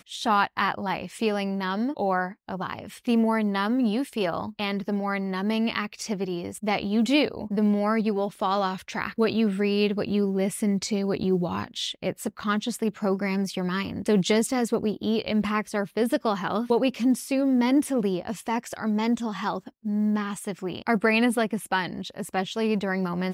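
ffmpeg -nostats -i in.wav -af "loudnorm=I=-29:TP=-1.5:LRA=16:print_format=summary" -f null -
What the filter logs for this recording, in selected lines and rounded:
Input Integrated:    -26.1 LUFS
Input True Peak:      -9.6 dBTP
Input LRA:             3.0 LU
Input Threshold:     -36.1 LUFS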